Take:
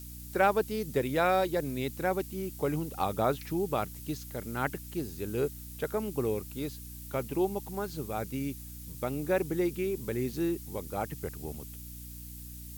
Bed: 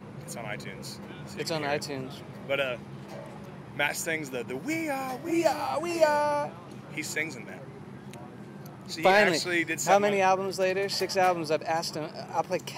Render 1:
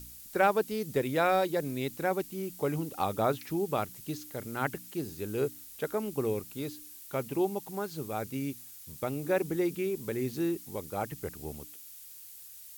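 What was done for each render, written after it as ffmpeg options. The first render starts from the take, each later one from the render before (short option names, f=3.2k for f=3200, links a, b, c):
-af "bandreject=f=60:t=h:w=4,bandreject=f=120:t=h:w=4,bandreject=f=180:t=h:w=4,bandreject=f=240:t=h:w=4,bandreject=f=300:t=h:w=4"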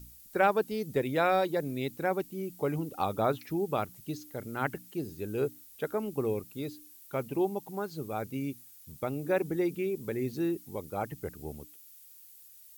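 -af "afftdn=nr=8:nf=-49"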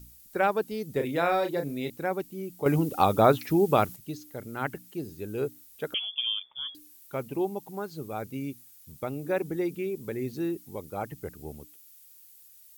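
-filter_complex "[0:a]asettb=1/sr,asplit=3[a][b][c];[a]atrim=end=0.924[d];[b]atrim=start=0.92:end=1.9,asetpts=PTS-STARTPTS,afade=t=in:d=0.004:c=qsin,afade=t=out:st=0.976:d=0.004:c=qsin,asplit=2[e][f];[f]adelay=35,volume=-7dB[g];[e][g]amix=inputs=2:normalize=0,atrim=end_sample=43218[h];[c]atrim=start=1.896[i];[d][h]acrossfade=d=0.004:c1=hsin:c2=qsin[j];[j][i]acrossfade=d=0.004:c1=qsin:c2=hsin,asettb=1/sr,asplit=3[k][l][m];[k]atrim=end=5.944[n];[l]atrim=start=5.94:end=6.75,asetpts=PTS-STARTPTS,afade=t=in:d=0.004:c=qsin,afade=t=out:st=0.806:d=0.004:c=qsin,lowpass=f=3.1k:t=q:w=0.5098,lowpass=f=3.1k:t=q:w=0.6013,lowpass=f=3.1k:t=q:w=0.9,lowpass=f=3.1k:t=q:w=2.563,afreqshift=-3600[o];[m]atrim=start=6.746[p];[n][o]acrossfade=d=0.004:c1=hsin:c2=qsin[q];[q][p]acrossfade=d=0.004:c1=qsin:c2=hsin,asplit=3[r][s][t];[r]atrim=end=2.662[u];[s]atrim=start=2.658:end=3.962,asetpts=PTS-STARTPTS,volume=8.5dB[v];[t]atrim=start=3.958[w];[u][v]acrossfade=d=0.004:c1=hsin:c2=hsin[x];[x][w]acrossfade=d=0.004:c1=hsin:c2=hsin"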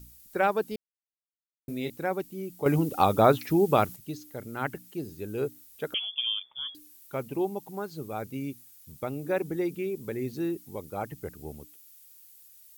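-filter_complex "[0:a]asplit=3[a][b][c];[a]atrim=end=0.76,asetpts=PTS-STARTPTS,afade=t=out:st=0.756:d=0.004:c=hsin[d];[b]atrim=start=0.76:end=1.68,asetpts=PTS-STARTPTS,volume=0[e];[c]atrim=start=1.68,asetpts=PTS-STARTPTS,afade=t=in:d=0.004:c=hsin[f];[d][e][f]concat=n=3:v=0:a=1"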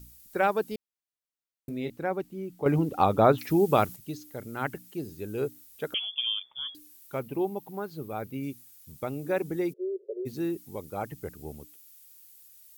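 -filter_complex "[0:a]asettb=1/sr,asplit=3[a][b][c];[a]atrim=end=1.694[d];[b]atrim=start=1.69:end=3.38,asetpts=PTS-STARTPTS,afade=t=in:d=0.004:c=qsin,afade=t=out:st=1.686:d=0.004:c=qsin,highshelf=f=4.2k:g=-12[e];[c]atrim=start=3.376[f];[d][e]acrossfade=d=0.004:c1=hsin:c2=qsin[g];[g][f]acrossfade=d=0.004:c1=qsin:c2=hsin,asettb=1/sr,asplit=3[h][i][j];[h]atrim=end=7.194[k];[i]atrim=start=7.19:end=8.43,asetpts=PTS-STARTPTS,afade=t=in:d=0.004:c=qsin,afade=t=out:st=1.236:d=0.004:c=qsin,equalizer=f=6.9k:w=0.98:g=-7[l];[j]atrim=start=8.426[m];[k][l]acrossfade=d=0.004:c1=hsin:c2=qsin[n];[n][m]acrossfade=d=0.004:c1=qsin:c2=hsin,asplit=3[o][p][q];[o]afade=t=out:st=9.72:d=0.02[r];[p]asuperpass=centerf=480:order=20:qfactor=1.6,afade=t=in:st=9.72:d=0.02,afade=t=out:st=10.25:d=0.02[s];[q]afade=t=in:st=10.25:d=0.02[t];[r][s][t]amix=inputs=3:normalize=0"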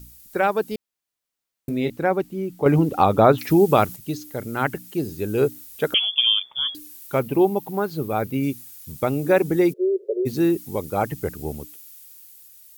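-filter_complex "[0:a]asplit=2[a][b];[b]alimiter=limit=-18.5dB:level=0:latency=1:release=312,volume=-0.5dB[c];[a][c]amix=inputs=2:normalize=0,dynaudnorm=f=220:g=11:m=5.5dB"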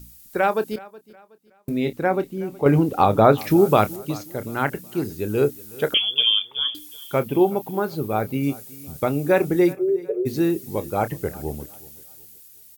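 -filter_complex "[0:a]asplit=2[a][b];[b]adelay=28,volume=-13dB[c];[a][c]amix=inputs=2:normalize=0,aecho=1:1:370|740|1110:0.0891|0.0312|0.0109"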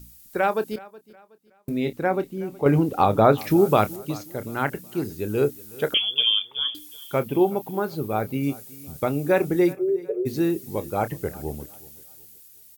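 -af "volume=-2dB"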